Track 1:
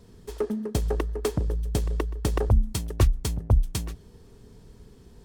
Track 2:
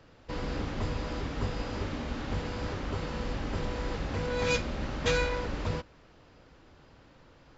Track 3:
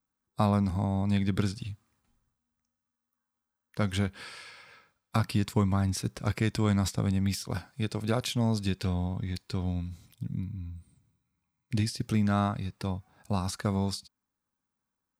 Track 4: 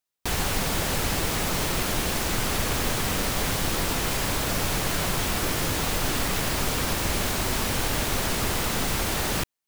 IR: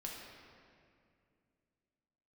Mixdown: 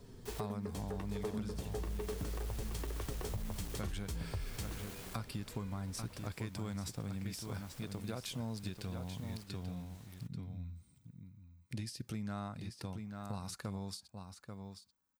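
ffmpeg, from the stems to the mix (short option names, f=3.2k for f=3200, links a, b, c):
-filter_complex "[0:a]alimiter=limit=-22dB:level=0:latency=1,flanger=delay=7:depth=5.4:regen=37:speed=0.46:shape=triangular,volume=1.5dB,asplit=2[a][b];[b]volume=-5dB[c];[1:a]acompressor=threshold=-35dB:ratio=6,adelay=450,volume=-19dB[d];[2:a]volume=-2dB,asplit=3[e][f][g];[f]volume=-17.5dB[h];[3:a]volume=27dB,asoftclip=hard,volume=-27dB,volume=-18dB,asplit=2[i][j];[j]volume=-16dB[k];[g]apad=whole_len=426699[l];[i][l]sidechaincompress=threshold=-35dB:ratio=8:attack=16:release=785[m];[a][d]amix=inputs=2:normalize=0,acrossover=split=500|3000[n][o][p];[n]acompressor=threshold=-38dB:ratio=6[q];[q][o][p]amix=inputs=3:normalize=0,alimiter=level_in=7dB:limit=-24dB:level=0:latency=1:release=442,volume=-7dB,volume=0dB[r];[e][m]amix=inputs=2:normalize=0,highshelf=f=7.8k:g=5.5,acompressor=threshold=-55dB:ratio=1.5,volume=0dB[s];[c][h][k]amix=inputs=3:normalize=0,aecho=0:1:837:1[t];[r][s][t]amix=inputs=3:normalize=0,acompressor=threshold=-35dB:ratio=6"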